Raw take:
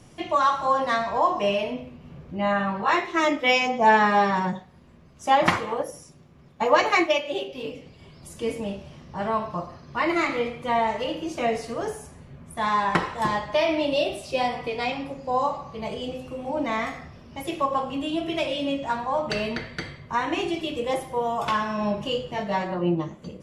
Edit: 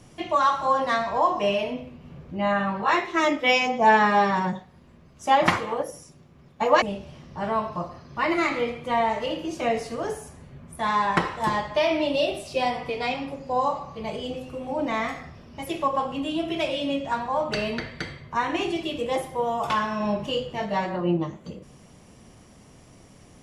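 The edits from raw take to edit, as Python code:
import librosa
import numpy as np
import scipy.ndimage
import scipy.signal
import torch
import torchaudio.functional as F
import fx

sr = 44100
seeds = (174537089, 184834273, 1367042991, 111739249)

y = fx.edit(x, sr, fx.cut(start_s=6.82, length_s=1.78), tone=tone)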